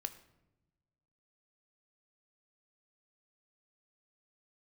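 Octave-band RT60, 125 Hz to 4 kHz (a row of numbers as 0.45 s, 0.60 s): 1.7 s, 1.5 s, 1.1 s, 0.80 s, 0.70 s, 0.55 s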